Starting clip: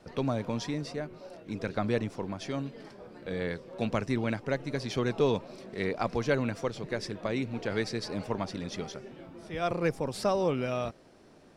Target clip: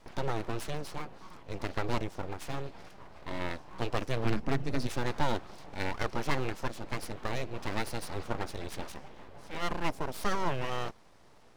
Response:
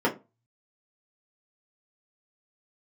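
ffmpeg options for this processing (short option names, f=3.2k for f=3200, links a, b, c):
-filter_complex "[0:a]asplit=3[a][b][c];[a]afade=t=out:st=4.24:d=0.02[d];[b]asubboost=boost=8.5:cutoff=130,afade=t=in:st=4.24:d=0.02,afade=t=out:st=4.86:d=0.02[e];[c]afade=t=in:st=4.86:d=0.02[f];[d][e][f]amix=inputs=3:normalize=0,aeval=exprs='abs(val(0))':c=same"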